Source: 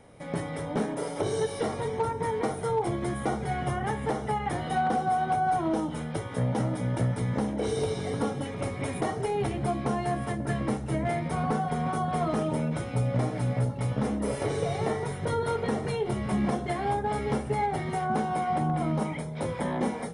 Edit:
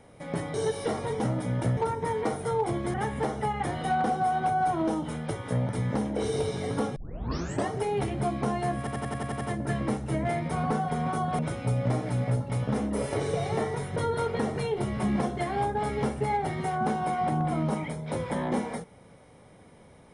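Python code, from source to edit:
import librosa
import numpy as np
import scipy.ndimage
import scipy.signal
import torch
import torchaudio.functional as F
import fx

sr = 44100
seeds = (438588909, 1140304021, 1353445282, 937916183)

y = fx.edit(x, sr, fx.cut(start_s=0.54, length_s=0.75),
    fx.cut(start_s=3.12, length_s=0.68),
    fx.move(start_s=6.55, length_s=0.57, to_s=1.95),
    fx.tape_start(start_s=8.39, length_s=0.72),
    fx.stutter(start_s=10.21, slice_s=0.09, count=8),
    fx.cut(start_s=12.19, length_s=0.49), tone=tone)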